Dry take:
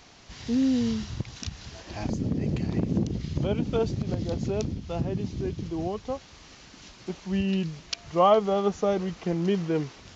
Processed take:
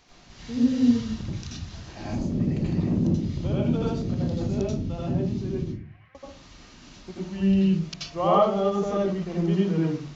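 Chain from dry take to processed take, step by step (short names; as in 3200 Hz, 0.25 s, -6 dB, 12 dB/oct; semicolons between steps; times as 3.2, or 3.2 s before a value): 5.63–6.15 Butterworth band-pass 1900 Hz, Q 2.6; reverb RT60 0.35 s, pre-delay 79 ms, DRR -5.5 dB; gain -7.5 dB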